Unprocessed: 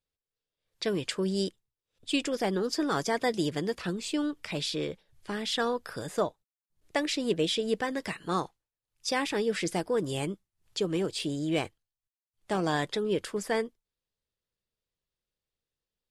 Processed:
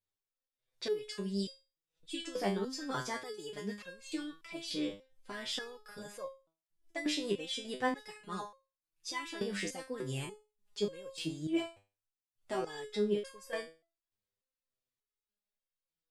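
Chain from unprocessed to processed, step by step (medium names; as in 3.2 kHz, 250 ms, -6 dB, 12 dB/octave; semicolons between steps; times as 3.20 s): resonator arpeggio 3.4 Hz 100–540 Hz; trim +5 dB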